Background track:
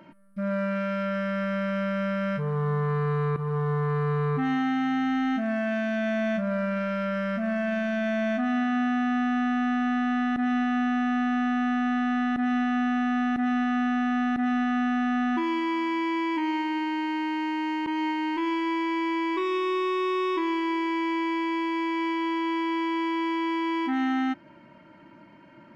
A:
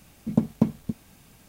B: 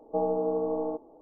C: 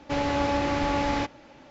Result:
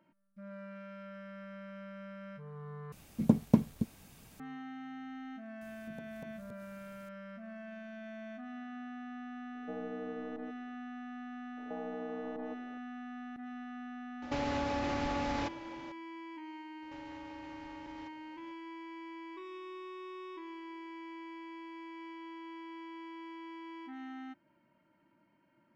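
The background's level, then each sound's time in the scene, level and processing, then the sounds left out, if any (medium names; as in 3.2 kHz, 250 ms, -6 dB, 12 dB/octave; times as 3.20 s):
background track -19.5 dB
2.92 s: replace with A -3 dB
5.61 s: add A -9 dB + compression 2.5:1, threshold -42 dBFS
9.54 s: add B -11.5 dB + peaking EQ 830 Hz -10.5 dB 1.1 oct
11.57 s: add B -6 dB + compression, threshold -33 dBFS
14.22 s: add C -0.5 dB + compression, threshold -30 dBFS
16.82 s: add C -14.5 dB + compression 5:1, threshold -36 dBFS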